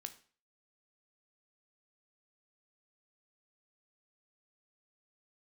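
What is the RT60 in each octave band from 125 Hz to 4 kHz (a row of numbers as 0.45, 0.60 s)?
0.45, 0.45, 0.40, 0.40, 0.40, 0.40 s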